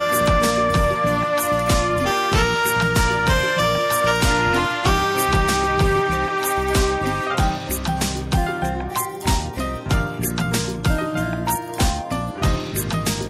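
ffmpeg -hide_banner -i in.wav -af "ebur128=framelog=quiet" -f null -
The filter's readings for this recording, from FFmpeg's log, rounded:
Integrated loudness:
  I:         -20.0 LUFS
  Threshold: -30.0 LUFS
Loudness range:
  LRA:         4.6 LU
  Threshold: -40.0 LUFS
  LRA low:   -22.8 LUFS
  LRA high:  -18.2 LUFS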